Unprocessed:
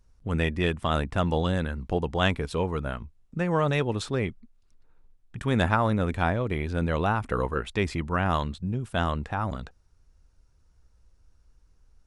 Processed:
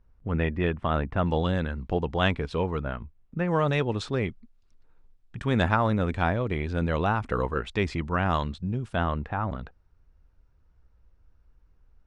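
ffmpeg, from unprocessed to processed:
ffmpeg -i in.wav -af "asetnsamples=nb_out_samples=441:pad=0,asendcmd='1.26 lowpass f 4400;2.81 lowpass f 2800;3.48 lowpass f 6000;8.96 lowpass f 2600',lowpass=2200" out.wav

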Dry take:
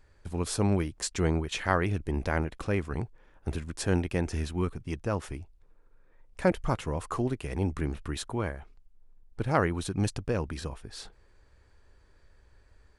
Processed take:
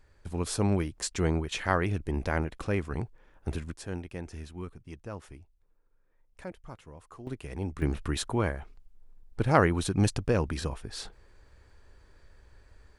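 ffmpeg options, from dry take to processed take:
ffmpeg -i in.wav -af "asetnsamples=nb_out_samples=441:pad=0,asendcmd='3.74 volume volume -10dB;6.44 volume volume -16.5dB;7.27 volume volume -5dB;7.82 volume volume 3.5dB',volume=-0.5dB" out.wav

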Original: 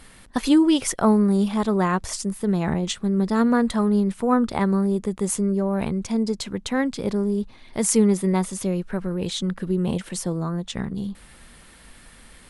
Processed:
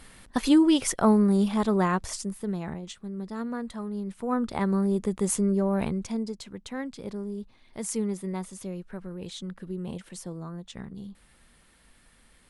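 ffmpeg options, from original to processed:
ffmpeg -i in.wav -af "volume=9.5dB,afade=type=out:start_time=1.79:duration=1.03:silence=0.266073,afade=type=in:start_time=3.95:duration=1.13:silence=0.251189,afade=type=out:start_time=5.75:duration=0.61:silence=0.334965" out.wav

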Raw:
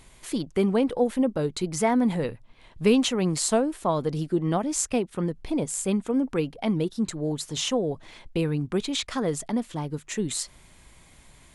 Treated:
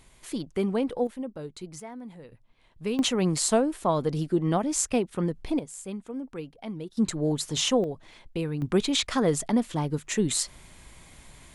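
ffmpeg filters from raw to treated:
ffmpeg -i in.wav -af "asetnsamples=nb_out_samples=441:pad=0,asendcmd='1.07 volume volume -11.5dB;1.8 volume volume -19dB;2.32 volume volume -10dB;2.99 volume volume 0dB;5.59 volume volume -11dB;6.97 volume volume 2dB;7.84 volume volume -4.5dB;8.62 volume volume 3dB',volume=-4dB" out.wav

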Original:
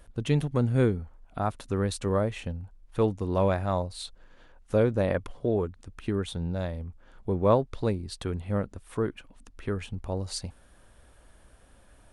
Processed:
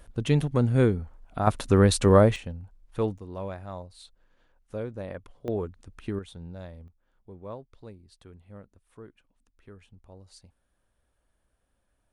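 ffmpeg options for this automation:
ffmpeg -i in.wav -af "asetnsamples=nb_out_samples=441:pad=0,asendcmd='1.47 volume volume 9dB;2.36 volume volume -2.5dB;3.18 volume volume -11dB;5.48 volume volume -3dB;6.19 volume volume -10dB;6.88 volume volume -18dB',volume=2dB" out.wav

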